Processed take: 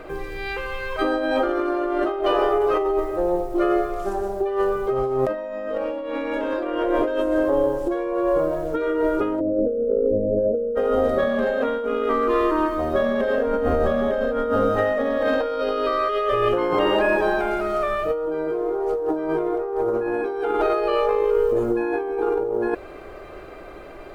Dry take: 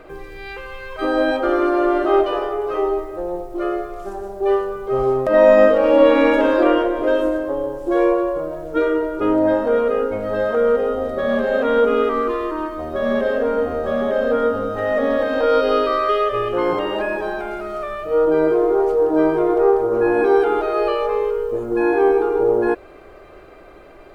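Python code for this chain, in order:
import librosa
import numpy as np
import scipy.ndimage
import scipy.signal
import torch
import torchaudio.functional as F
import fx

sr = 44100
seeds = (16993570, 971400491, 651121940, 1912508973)

y = fx.steep_lowpass(x, sr, hz=600.0, slope=72, at=(9.39, 10.75), fade=0.02)
y = fx.low_shelf(y, sr, hz=94.0, db=9.5, at=(13.47, 14.5))
y = fx.over_compress(y, sr, threshold_db=-22.0, ratio=-1.0)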